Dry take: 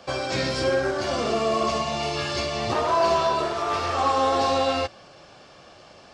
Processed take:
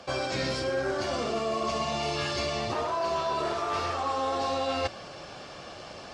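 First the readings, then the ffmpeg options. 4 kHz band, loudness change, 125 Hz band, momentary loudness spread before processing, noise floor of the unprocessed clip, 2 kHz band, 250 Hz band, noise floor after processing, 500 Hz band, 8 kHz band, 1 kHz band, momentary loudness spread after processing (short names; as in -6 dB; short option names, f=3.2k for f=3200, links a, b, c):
-4.5 dB, -5.5 dB, -4.5 dB, 5 LU, -49 dBFS, -4.5 dB, -5.0 dB, -44 dBFS, -6.0 dB, -4.5 dB, -6.5 dB, 14 LU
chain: -af "areverse,acompressor=threshold=-33dB:ratio=6,areverse,volume=5.5dB" -ar 48000 -c:a libopus -b:a 48k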